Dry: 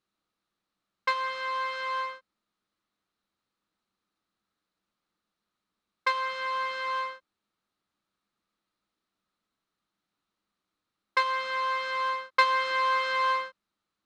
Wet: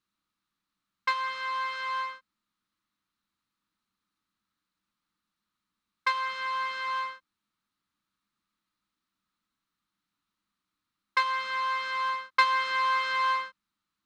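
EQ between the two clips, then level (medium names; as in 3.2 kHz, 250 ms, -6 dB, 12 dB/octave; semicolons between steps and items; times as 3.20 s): high-order bell 530 Hz -9.5 dB 1.3 oct; 0.0 dB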